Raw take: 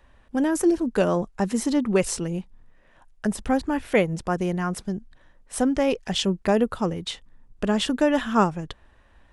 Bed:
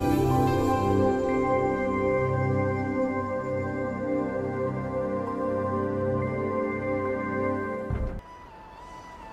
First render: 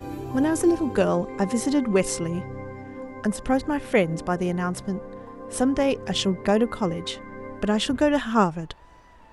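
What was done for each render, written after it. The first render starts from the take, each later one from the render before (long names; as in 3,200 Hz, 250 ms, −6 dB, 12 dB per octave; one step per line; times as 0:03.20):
mix in bed −10.5 dB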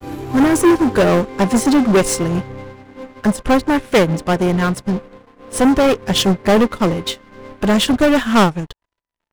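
leveller curve on the samples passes 5
expander for the loud parts 2.5 to 1, over −29 dBFS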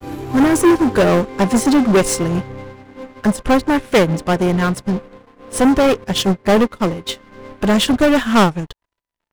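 0:06.04–0:07.09: expander for the loud parts, over −31 dBFS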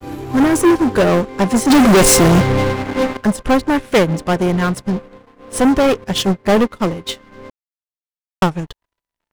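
0:01.70–0:03.17: leveller curve on the samples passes 5
0:07.50–0:08.42: silence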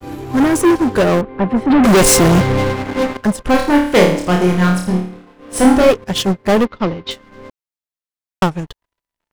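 0:01.21–0:01.84: high-frequency loss of the air 480 metres
0:03.51–0:05.91: flutter between parallel walls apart 4.7 metres, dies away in 0.53 s
0:06.65–0:07.11: low-pass filter 4,900 Hz 24 dB per octave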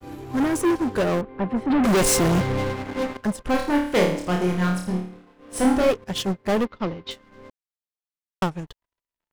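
level −9 dB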